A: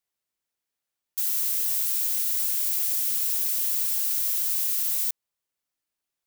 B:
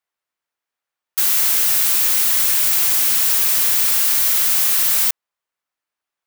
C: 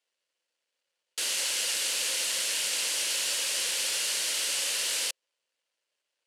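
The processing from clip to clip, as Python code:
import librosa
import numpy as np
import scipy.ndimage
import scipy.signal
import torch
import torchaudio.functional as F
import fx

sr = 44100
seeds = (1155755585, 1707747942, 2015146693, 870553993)

y1 = fx.peak_eq(x, sr, hz=1200.0, db=12.0, octaves=2.8)
y1 = fx.leveller(y1, sr, passes=3)
y1 = y1 * 10.0 ** (1.5 / 20.0)
y2 = fx.law_mismatch(y1, sr, coded='mu')
y2 = fx.cabinet(y2, sr, low_hz=330.0, low_slope=12, high_hz=9600.0, hz=(530.0, 770.0, 1200.0, 2900.0, 4500.0), db=(10, -6, -7, 7, 4))
y2 = y2 * 10.0 ** (-7.5 / 20.0)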